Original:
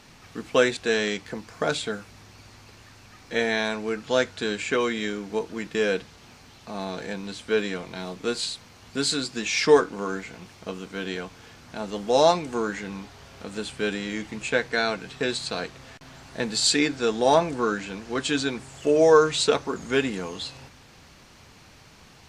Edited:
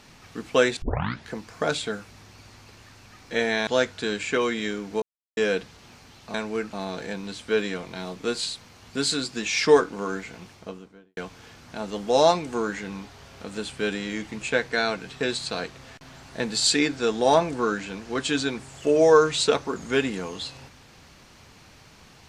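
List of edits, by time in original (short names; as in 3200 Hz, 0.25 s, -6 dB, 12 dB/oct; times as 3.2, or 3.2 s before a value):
0.82 tape start 0.49 s
3.67–4.06 move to 6.73
5.41–5.76 mute
10.42–11.17 studio fade out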